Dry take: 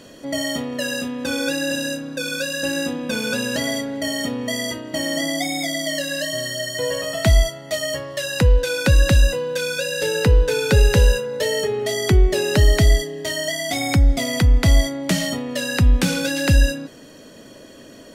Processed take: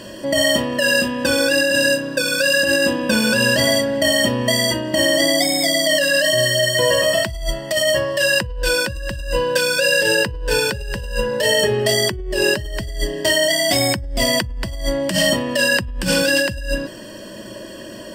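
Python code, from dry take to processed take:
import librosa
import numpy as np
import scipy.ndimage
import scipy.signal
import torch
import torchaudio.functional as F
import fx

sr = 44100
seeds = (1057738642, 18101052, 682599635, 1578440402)

y = fx.ripple_eq(x, sr, per_octave=1.3, db=11)
y = fx.over_compress(y, sr, threshold_db=-22.0, ratio=-1.0)
y = y * 10.0 ** (3.0 / 20.0)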